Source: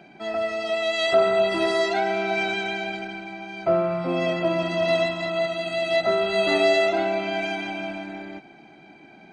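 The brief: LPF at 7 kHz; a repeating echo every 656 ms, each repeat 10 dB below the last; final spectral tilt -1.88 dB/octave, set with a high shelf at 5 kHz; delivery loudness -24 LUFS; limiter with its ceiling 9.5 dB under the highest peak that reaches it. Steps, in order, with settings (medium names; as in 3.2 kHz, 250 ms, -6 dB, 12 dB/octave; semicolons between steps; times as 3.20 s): low-pass 7 kHz; treble shelf 5 kHz +6.5 dB; peak limiter -17 dBFS; feedback delay 656 ms, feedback 32%, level -10 dB; trim +1 dB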